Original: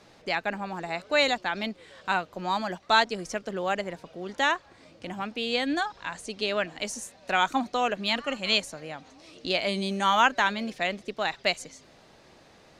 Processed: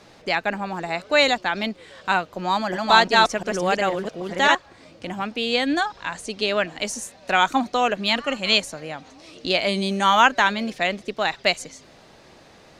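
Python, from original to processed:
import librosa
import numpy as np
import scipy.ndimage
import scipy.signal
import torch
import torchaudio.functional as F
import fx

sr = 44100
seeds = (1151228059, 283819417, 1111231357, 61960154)

y = fx.reverse_delay(x, sr, ms=350, wet_db=-1, at=(2.38, 4.55))
y = F.gain(torch.from_numpy(y), 5.5).numpy()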